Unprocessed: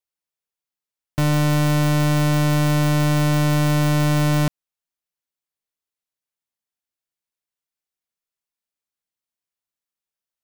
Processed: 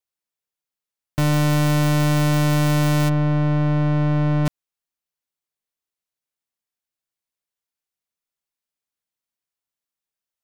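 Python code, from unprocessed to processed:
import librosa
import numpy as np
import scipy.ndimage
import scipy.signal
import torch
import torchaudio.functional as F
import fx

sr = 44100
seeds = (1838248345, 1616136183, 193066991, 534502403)

y = fx.spacing_loss(x, sr, db_at_10k=36, at=(3.08, 4.45), fade=0.02)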